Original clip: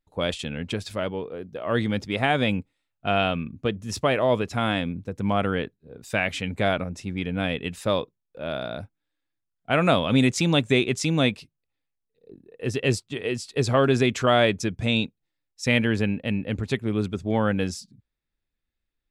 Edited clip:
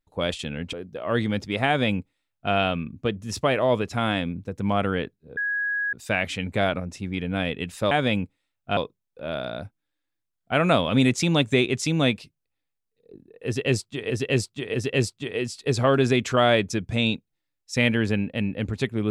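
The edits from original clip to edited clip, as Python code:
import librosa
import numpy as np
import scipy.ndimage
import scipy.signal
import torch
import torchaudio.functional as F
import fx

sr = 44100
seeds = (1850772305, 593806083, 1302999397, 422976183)

y = fx.edit(x, sr, fx.cut(start_s=0.73, length_s=0.6),
    fx.duplicate(start_s=2.27, length_s=0.86, to_s=7.95),
    fx.insert_tone(at_s=5.97, length_s=0.56, hz=1660.0, db=-23.0),
    fx.repeat(start_s=12.64, length_s=0.64, count=3), tone=tone)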